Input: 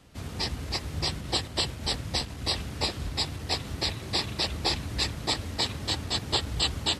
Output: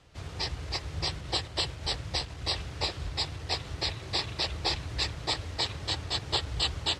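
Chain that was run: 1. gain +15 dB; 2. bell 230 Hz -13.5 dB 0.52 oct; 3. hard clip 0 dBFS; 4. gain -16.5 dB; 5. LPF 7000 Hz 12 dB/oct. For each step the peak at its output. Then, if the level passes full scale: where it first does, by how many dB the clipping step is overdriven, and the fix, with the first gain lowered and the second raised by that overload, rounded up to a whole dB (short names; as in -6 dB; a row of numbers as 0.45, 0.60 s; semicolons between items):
+3.5, +3.0, 0.0, -16.5, -16.0 dBFS; step 1, 3.0 dB; step 1 +12 dB, step 4 -13.5 dB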